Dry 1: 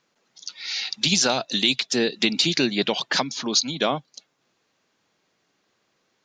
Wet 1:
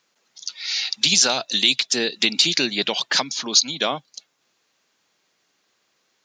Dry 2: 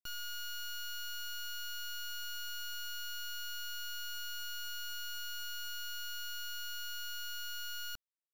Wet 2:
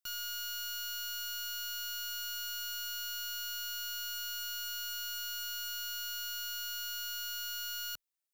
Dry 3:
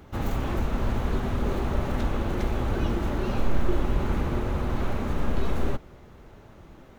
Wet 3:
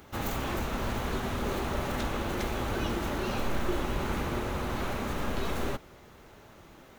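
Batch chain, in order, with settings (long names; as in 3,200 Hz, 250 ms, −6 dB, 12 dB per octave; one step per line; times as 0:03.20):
spectral tilt +2 dB per octave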